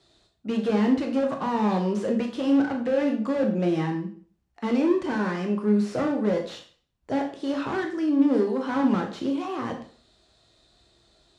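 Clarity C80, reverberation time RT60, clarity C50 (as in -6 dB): 12.0 dB, 0.45 s, 8.5 dB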